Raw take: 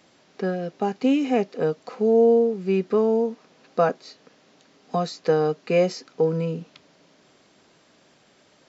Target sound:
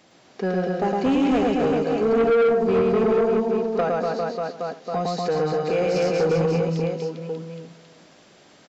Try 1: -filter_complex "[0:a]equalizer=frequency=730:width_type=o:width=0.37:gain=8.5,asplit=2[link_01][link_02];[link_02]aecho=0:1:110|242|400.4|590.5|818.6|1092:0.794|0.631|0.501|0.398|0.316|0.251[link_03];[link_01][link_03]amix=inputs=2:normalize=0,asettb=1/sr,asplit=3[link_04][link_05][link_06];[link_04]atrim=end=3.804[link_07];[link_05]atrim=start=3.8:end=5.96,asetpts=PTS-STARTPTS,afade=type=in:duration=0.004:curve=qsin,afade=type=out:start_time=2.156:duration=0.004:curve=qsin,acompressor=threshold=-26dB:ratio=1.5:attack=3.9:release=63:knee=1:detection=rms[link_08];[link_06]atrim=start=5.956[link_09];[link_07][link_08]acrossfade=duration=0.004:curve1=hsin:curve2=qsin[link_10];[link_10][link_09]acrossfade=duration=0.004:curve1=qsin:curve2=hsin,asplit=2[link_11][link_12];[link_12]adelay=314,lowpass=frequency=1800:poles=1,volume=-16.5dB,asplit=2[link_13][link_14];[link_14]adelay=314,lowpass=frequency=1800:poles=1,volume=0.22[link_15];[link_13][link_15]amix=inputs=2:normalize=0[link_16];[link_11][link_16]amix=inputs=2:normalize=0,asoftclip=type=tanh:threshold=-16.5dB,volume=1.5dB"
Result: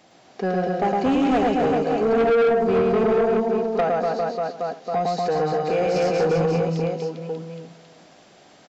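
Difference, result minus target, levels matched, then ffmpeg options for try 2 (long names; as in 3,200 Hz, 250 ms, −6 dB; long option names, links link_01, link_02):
1,000 Hz band +3.0 dB
-filter_complex "[0:a]equalizer=frequency=730:width_type=o:width=0.37:gain=2,asplit=2[link_01][link_02];[link_02]aecho=0:1:110|242|400.4|590.5|818.6|1092:0.794|0.631|0.501|0.398|0.316|0.251[link_03];[link_01][link_03]amix=inputs=2:normalize=0,asettb=1/sr,asplit=3[link_04][link_05][link_06];[link_04]atrim=end=3.804[link_07];[link_05]atrim=start=3.8:end=5.96,asetpts=PTS-STARTPTS,afade=type=in:duration=0.004:curve=qsin,afade=type=out:start_time=2.156:duration=0.004:curve=qsin,acompressor=threshold=-26dB:ratio=1.5:attack=3.9:release=63:knee=1:detection=rms[link_08];[link_06]atrim=start=5.956[link_09];[link_07][link_08]acrossfade=duration=0.004:curve1=hsin:curve2=qsin[link_10];[link_10][link_09]acrossfade=duration=0.004:curve1=qsin:curve2=hsin,asplit=2[link_11][link_12];[link_12]adelay=314,lowpass=frequency=1800:poles=1,volume=-16.5dB,asplit=2[link_13][link_14];[link_14]adelay=314,lowpass=frequency=1800:poles=1,volume=0.22[link_15];[link_13][link_15]amix=inputs=2:normalize=0[link_16];[link_11][link_16]amix=inputs=2:normalize=0,asoftclip=type=tanh:threshold=-16.5dB,volume=1.5dB"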